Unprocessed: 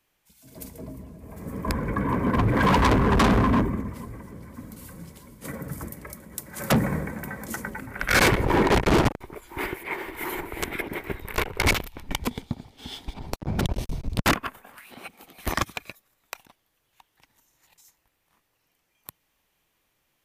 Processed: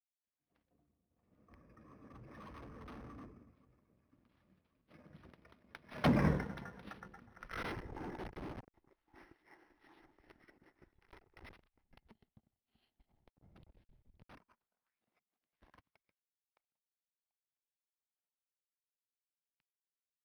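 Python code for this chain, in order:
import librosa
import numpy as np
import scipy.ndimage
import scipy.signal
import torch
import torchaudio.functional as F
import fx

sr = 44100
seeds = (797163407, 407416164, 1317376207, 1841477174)

y = fx.law_mismatch(x, sr, coded='A')
y = fx.doppler_pass(y, sr, speed_mps=34, closest_m=3.9, pass_at_s=6.28)
y = np.interp(np.arange(len(y)), np.arange(len(y))[::6], y[::6])
y = y * librosa.db_to_amplitude(-1.5)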